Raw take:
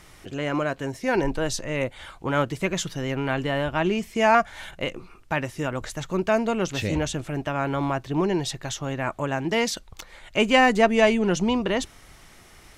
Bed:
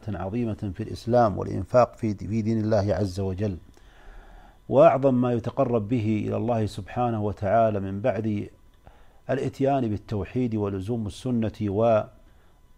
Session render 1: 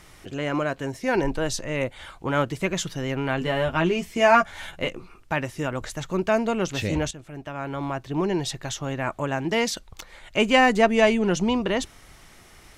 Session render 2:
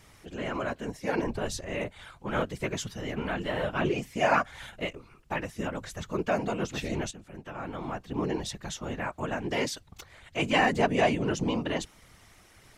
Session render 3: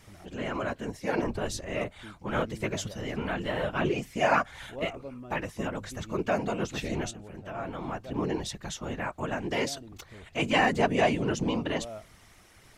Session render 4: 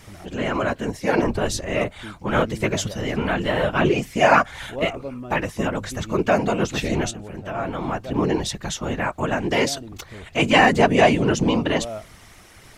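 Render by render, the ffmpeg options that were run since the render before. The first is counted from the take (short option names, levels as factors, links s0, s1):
-filter_complex "[0:a]asettb=1/sr,asplit=3[s0][s1][s2];[s0]atrim=end=3.404[s3];[s1]atrim=start=3.4:end=4.88,asetpts=PTS-STARTPTS,afade=t=in:d=0.004:c=qsin,afade=t=out:st=1.476:d=0.004:c=qsin,asplit=2[s4][s5];[s5]adelay=12,volume=0.631[s6];[s4][s6]amix=inputs=2:normalize=0,atrim=end_sample=65268[s7];[s2]atrim=start=4.876[s8];[s3][s7]acrossfade=d=0.004:c1=hsin:c2=qsin[s9];[s9][s8]acrossfade=d=0.004:c1=qsin:c2=hsin,asplit=2[s10][s11];[s10]atrim=end=7.11,asetpts=PTS-STARTPTS,afade=t=out:st=7.106:d=0.004:c=hsin:silence=0.211349[s12];[s11]atrim=start=7.11,asetpts=PTS-STARTPTS,afade=t=in:d=1.36:silence=0.211349[s13];[s12][s13]concat=n=2:v=0:a=1"
-af "afftfilt=real='hypot(re,im)*cos(2*PI*random(0))':imag='hypot(re,im)*sin(2*PI*random(1))':win_size=512:overlap=0.75"
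-filter_complex "[1:a]volume=0.0891[s0];[0:a][s0]amix=inputs=2:normalize=0"
-af "volume=2.82,alimiter=limit=0.708:level=0:latency=1"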